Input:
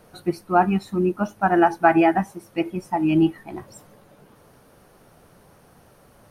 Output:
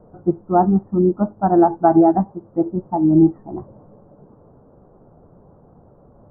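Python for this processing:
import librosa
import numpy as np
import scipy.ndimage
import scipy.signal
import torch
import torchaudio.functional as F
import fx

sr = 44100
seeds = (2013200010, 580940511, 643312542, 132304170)

y = scipy.signal.sosfilt(scipy.signal.bessel(8, 660.0, 'lowpass', norm='mag', fs=sr, output='sos'), x)
y = y * 10.0 ** (6.0 / 20.0)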